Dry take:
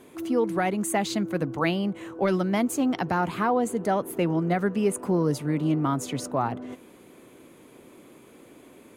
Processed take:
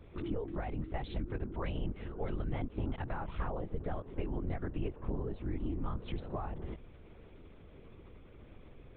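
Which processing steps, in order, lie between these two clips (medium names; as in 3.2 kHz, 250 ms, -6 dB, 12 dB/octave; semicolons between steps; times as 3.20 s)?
compression, threshold -30 dBFS, peak gain reduction 11 dB; LPC vocoder at 8 kHz whisper; bass shelf 120 Hz +8 dB; trim -6.5 dB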